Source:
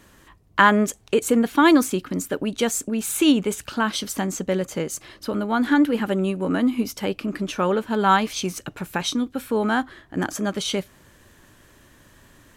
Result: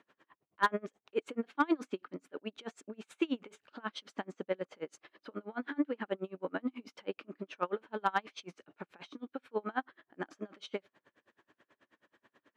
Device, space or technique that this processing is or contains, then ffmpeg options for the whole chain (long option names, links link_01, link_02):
helicopter radio: -af "highpass=320,lowpass=2700,aeval=exprs='val(0)*pow(10,-33*(0.5-0.5*cos(2*PI*9.3*n/s))/20)':channel_layout=same,asoftclip=type=hard:threshold=-11dB,volume=-6.5dB"